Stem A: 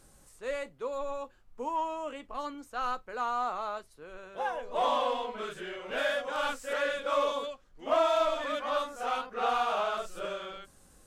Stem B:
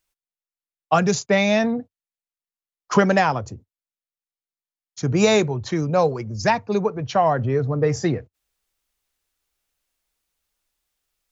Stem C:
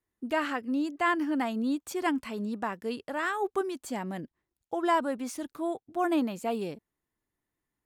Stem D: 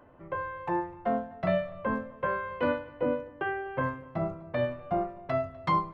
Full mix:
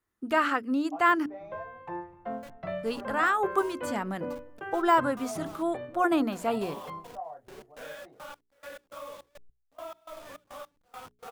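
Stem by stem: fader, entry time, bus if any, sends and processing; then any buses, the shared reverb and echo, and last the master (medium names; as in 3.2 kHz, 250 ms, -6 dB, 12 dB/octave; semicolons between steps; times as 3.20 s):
-8.5 dB, 1.85 s, no send, send-on-delta sampling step -32.5 dBFS; compression 2:1, threshold -34 dBFS, peak gain reduction 7.5 dB; trance gate ".xx.x..x" 104 bpm -24 dB
-14.5 dB, 0.00 s, no send, band-pass filter 730 Hz, Q 3.7; detune thickener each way 16 cents
+2.0 dB, 0.00 s, muted 1.26–2.83 s, no send, peaking EQ 1.3 kHz +8.5 dB 0.48 oct; de-esser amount 85%
5.55 s -7.5 dB -> 6.05 s -15.5 dB, 1.20 s, no send, none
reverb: none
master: hum notches 60/120/180/240/300/360/420 Hz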